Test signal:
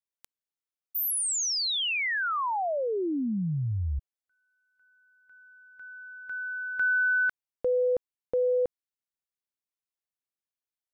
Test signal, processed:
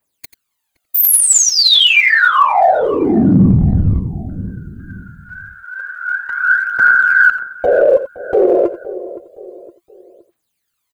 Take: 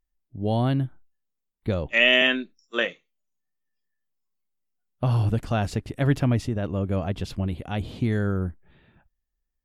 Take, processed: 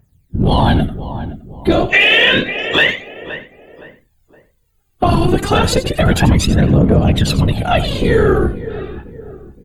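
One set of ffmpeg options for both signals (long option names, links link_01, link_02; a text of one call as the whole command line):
ffmpeg -i in.wav -filter_complex "[0:a]afftfilt=real='hypot(re,im)*cos(2*PI*random(0))':imag='hypot(re,im)*sin(2*PI*random(1))':win_size=512:overlap=0.75,bandreject=frequency=5500:width=5.9,adynamicequalizer=threshold=0.00178:dfrequency=3600:dqfactor=4.4:tfrequency=3600:tqfactor=4.4:attack=5:release=100:ratio=0.375:range=2:mode=boostabove:tftype=bell,aphaser=in_gain=1:out_gain=1:delay=3:decay=0.72:speed=0.29:type=triangular,asplit=2[link_01][link_02];[link_02]adelay=517,lowpass=frequency=1100:poles=1,volume=-18.5dB,asplit=2[link_03][link_04];[link_04]adelay=517,lowpass=frequency=1100:poles=1,volume=0.43,asplit=2[link_05][link_06];[link_06]adelay=517,lowpass=frequency=1100:poles=1,volume=0.43[link_07];[link_03][link_05][link_07]amix=inputs=3:normalize=0[link_08];[link_01][link_08]amix=inputs=2:normalize=0,acompressor=threshold=-32dB:ratio=2.5:attack=0.49:release=51:knee=6:detection=peak,lowshelf=frequency=68:gain=-9,asplit=2[link_09][link_10];[link_10]aecho=0:1:88:0.211[link_11];[link_09][link_11]amix=inputs=2:normalize=0,alimiter=level_in=25.5dB:limit=-1dB:release=50:level=0:latency=1,volume=-1dB" out.wav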